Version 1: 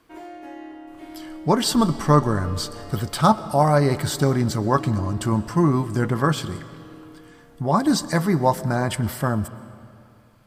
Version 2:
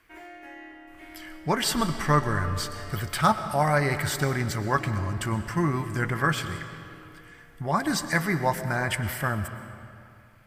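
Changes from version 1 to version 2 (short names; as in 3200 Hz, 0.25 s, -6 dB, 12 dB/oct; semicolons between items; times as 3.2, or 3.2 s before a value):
speech: send +6.5 dB; master: add graphic EQ 125/250/500/1000/2000/4000/8000 Hz -5/-9/-6/-6/+8/-6/-3 dB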